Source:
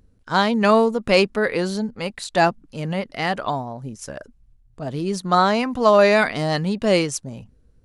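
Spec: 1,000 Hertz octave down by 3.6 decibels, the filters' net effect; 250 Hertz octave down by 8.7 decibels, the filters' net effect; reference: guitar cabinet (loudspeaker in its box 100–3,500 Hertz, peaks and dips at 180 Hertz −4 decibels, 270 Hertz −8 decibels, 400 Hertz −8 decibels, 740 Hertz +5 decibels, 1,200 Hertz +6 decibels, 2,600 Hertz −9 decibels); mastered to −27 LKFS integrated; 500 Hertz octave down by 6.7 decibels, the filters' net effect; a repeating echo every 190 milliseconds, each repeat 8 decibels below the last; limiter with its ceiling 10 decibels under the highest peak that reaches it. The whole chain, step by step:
parametric band 250 Hz −4.5 dB
parametric band 500 Hz −4.5 dB
parametric band 1,000 Hz −8 dB
brickwall limiter −16.5 dBFS
loudspeaker in its box 100–3,500 Hz, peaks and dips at 180 Hz −4 dB, 270 Hz −8 dB, 400 Hz −8 dB, 740 Hz +5 dB, 1,200 Hz +6 dB, 2,600 Hz −9 dB
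repeating echo 190 ms, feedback 40%, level −8 dB
level +2 dB

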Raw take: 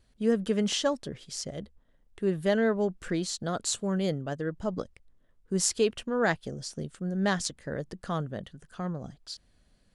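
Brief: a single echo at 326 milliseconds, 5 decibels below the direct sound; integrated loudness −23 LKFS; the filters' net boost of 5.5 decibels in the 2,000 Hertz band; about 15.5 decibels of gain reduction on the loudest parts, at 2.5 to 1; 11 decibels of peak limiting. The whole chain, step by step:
parametric band 2,000 Hz +7 dB
downward compressor 2.5 to 1, threshold −44 dBFS
brickwall limiter −33 dBFS
single-tap delay 326 ms −5 dB
level +20 dB

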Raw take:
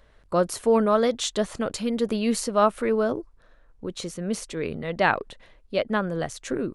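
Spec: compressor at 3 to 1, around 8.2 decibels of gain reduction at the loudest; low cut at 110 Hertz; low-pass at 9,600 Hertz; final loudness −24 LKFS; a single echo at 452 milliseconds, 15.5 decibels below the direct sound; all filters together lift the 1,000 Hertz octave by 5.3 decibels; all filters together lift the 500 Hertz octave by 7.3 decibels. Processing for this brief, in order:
high-pass filter 110 Hz
low-pass filter 9,600 Hz
parametric band 500 Hz +7.5 dB
parametric band 1,000 Hz +4.5 dB
downward compressor 3 to 1, threshold −20 dBFS
single-tap delay 452 ms −15.5 dB
level +1 dB

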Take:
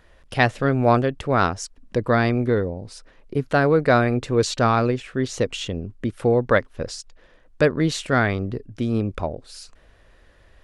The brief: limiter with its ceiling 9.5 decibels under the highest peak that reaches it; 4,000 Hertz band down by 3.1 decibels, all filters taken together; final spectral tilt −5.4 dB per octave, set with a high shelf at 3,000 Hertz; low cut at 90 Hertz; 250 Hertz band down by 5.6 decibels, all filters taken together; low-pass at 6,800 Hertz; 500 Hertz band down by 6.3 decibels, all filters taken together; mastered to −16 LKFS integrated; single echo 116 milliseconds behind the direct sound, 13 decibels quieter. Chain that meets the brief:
high-pass filter 90 Hz
low-pass filter 6,800 Hz
parametric band 250 Hz −5 dB
parametric band 500 Hz −6.5 dB
high-shelf EQ 3,000 Hz +6 dB
parametric band 4,000 Hz −8 dB
brickwall limiter −12.5 dBFS
single-tap delay 116 ms −13 dB
level +11 dB

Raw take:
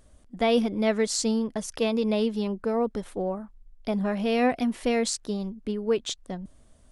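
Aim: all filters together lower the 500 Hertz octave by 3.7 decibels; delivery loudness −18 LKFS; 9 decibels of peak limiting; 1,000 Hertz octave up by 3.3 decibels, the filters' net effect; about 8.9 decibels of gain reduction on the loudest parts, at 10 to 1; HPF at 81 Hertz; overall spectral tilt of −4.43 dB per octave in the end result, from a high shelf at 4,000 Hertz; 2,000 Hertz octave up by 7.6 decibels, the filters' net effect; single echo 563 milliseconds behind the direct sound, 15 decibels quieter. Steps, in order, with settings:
high-pass filter 81 Hz
parametric band 500 Hz −7 dB
parametric band 1,000 Hz +7.5 dB
parametric band 2,000 Hz +9 dB
high-shelf EQ 4,000 Hz −6 dB
downward compressor 10 to 1, threshold −26 dBFS
brickwall limiter −25 dBFS
single-tap delay 563 ms −15 dB
level +16 dB

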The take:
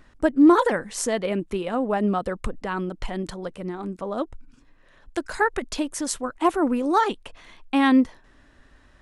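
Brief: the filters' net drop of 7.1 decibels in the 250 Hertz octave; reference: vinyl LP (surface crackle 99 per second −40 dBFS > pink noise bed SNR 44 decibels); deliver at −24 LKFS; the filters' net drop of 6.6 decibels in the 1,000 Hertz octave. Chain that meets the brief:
parametric band 250 Hz −8.5 dB
parametric band 1,000 Hz −8 dB
surface crackle 99 per second −40 dBFS
pink noise bed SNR 44 dB
level +5.5 dB

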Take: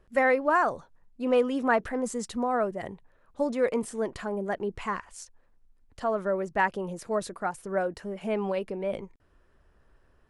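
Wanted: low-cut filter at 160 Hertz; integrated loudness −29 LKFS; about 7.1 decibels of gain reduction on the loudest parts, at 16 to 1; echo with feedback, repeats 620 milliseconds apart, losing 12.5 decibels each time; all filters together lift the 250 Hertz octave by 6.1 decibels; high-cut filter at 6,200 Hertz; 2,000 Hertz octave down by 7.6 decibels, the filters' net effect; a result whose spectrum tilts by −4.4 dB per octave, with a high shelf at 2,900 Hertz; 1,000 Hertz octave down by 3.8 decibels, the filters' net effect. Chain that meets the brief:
high-pass filter 160 Hz
low-pass filter 6,200 Hz
parametric band 250 Hz +8 dB
parametric band 1,000 Hz −3.5 dB
parametric band 2,000 Hz −6.5 dB
high-shelf EQ 2,900 Hz −5.5 dB
downward compressor 16 to 1, threshold −25 dBFS
repeating echo 620 ms, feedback 24%, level −12.5 dB
level +3 dB

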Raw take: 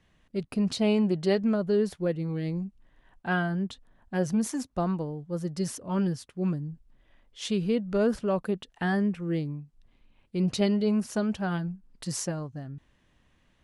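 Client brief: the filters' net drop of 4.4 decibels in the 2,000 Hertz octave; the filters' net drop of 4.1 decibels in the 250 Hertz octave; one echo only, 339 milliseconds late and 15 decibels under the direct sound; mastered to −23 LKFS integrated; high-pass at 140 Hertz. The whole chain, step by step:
high-pass filter 140 Hz
parametric band 250 Hz −4.5 dB
parametric band 2,000 Hz −6 dB
single-tap delay 339 ms −15 dB
level +9 dB

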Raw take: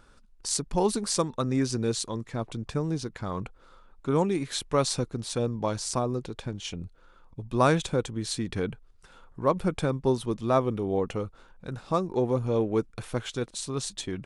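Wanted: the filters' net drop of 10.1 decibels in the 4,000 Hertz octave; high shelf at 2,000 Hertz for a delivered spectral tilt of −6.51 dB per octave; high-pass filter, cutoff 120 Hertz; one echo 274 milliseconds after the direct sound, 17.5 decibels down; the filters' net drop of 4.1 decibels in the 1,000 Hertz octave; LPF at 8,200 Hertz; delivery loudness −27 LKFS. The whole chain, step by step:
high-pass filter 120 Hz
low-pass filter 8,200 Hz
parametric band 1,000 Hz −3.5 dB
high-shelf EQ 2,000 Hz −5 dB
parametric band 4,000 Hz −7 dB
single-tap delay 274 ms −17.5 dB
level +3.5 dB

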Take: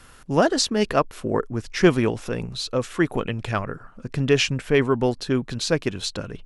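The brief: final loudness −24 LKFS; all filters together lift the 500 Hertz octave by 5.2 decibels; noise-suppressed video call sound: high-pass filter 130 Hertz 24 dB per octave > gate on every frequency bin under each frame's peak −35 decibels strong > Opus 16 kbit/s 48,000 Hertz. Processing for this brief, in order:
high-pass filter 130 Hz 24 dB per octave
parametric band 500 Hz +6.5 dB
gate on every frequency bin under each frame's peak −35 dB strong
level −3.5 dB
Opus 16 kbit/s 48,000 Hz

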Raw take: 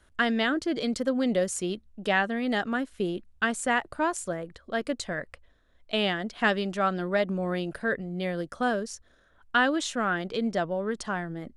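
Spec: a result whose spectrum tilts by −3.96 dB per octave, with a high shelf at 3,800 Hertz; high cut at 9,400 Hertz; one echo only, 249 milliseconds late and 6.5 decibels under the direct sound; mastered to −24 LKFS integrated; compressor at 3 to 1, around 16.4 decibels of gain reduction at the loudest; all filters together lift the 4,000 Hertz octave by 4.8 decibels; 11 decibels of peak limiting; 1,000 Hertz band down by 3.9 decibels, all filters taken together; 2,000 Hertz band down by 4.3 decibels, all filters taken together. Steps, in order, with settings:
low-pass filter 9,400 Hz
parametric band 1,000 Hz −5 dB
parametric band 2,000 Hz −6.5 dB
high-shelf EQ 3,800 Hz +9 dB
parametric band 4,000 Hz +4.5 dB
downward compressor 3 to 1, threshold −45 dBFS
brickwall limiter −35.5 dBFS
single-tap delay 249 ms −6.5 dB
level +20.5 dB

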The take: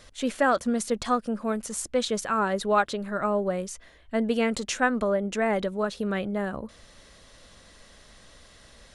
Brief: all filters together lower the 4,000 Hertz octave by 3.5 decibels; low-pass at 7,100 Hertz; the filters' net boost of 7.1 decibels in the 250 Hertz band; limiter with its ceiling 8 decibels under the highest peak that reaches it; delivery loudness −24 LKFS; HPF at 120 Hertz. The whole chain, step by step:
high-pass filter 120 Hz
low-pass filter 7,100 Hz
parametric band 250 Hz +8.5 dB
parametric band 4,000 Hz −4 dB
level +2 dB
brickwall limiter −14.5 dBFS

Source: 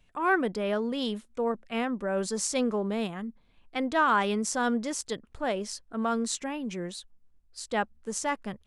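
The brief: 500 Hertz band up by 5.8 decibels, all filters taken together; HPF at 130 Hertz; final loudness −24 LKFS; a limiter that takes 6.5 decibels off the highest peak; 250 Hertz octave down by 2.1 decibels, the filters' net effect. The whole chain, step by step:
high-pass filter 130 Hz
parametric band 250 Hz −4 dB
parametric band 500 Hz +8 dB
level +5 dB
brickwall limiter −12.5 dBFS

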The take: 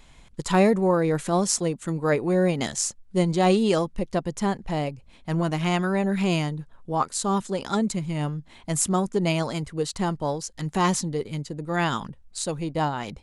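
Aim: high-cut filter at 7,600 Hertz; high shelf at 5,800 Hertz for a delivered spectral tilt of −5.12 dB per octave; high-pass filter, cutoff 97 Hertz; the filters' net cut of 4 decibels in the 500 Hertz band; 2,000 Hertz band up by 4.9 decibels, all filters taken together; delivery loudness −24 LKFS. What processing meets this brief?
high-pass filter 97 Hz
low-pass filter 7,600 Hz
parametric band 500 Hz −5.5 dB
parametric band 2,000 Hz +7 dB
high-shelf EQ 5,800 Hz −5 dB
level +2.5 dB

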